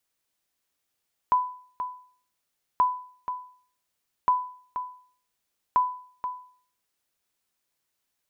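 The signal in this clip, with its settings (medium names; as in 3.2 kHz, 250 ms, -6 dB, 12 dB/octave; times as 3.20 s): sonar ping 999 Hz, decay 0.50 s, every 1.48 s, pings 4, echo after 0.48 s, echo -10 dB -14 dBFS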